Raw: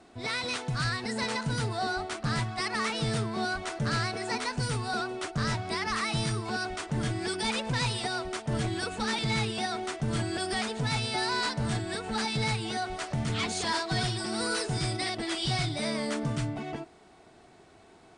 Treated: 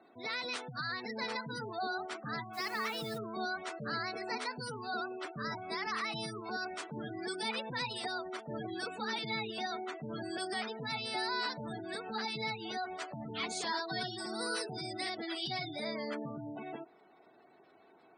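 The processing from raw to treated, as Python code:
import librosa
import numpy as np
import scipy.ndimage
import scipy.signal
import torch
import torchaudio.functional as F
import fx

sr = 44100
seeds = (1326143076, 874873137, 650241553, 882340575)

y = fx.spec_gate(x, sr, threshold_db=-20, keep='strong')
y = scipy.signal.sosfilt(scipy.signal.butter(2, 260.0, 'highpass', fs=sr, output='sos'), y)
y = fx.dmg_noise_colour(y, sr, seeds[0], colour='white', level_db=-51.0, at=(2.53, 3.17), fade=0.02)
y = y * 10.0 ** (-5.0 / 20.0)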